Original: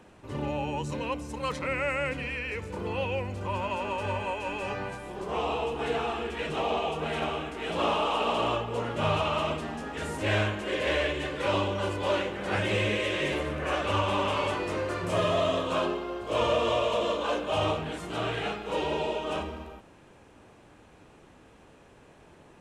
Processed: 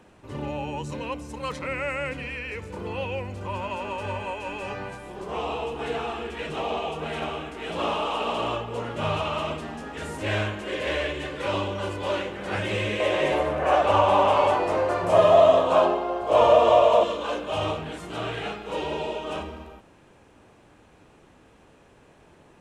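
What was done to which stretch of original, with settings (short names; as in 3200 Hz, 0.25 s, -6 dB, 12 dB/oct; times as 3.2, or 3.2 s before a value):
13–17.04 bell 740 Hz +14.5 dB 1.1 oct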